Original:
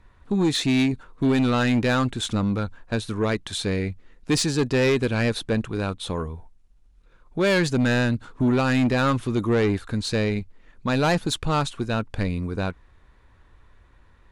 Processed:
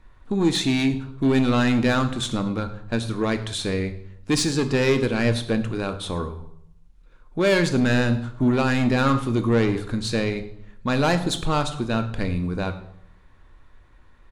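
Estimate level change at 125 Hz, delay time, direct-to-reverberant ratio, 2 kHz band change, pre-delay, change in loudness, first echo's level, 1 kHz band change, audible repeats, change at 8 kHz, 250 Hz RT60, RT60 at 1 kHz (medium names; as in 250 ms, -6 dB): +0.5 dB, 107 ms, 7.5 dB, +0.5 dB, 3 ms, +0.5 dB, -19.0 dB, +1.0 dB, 1, +0.5 dB, 0.85 s, 0.75 s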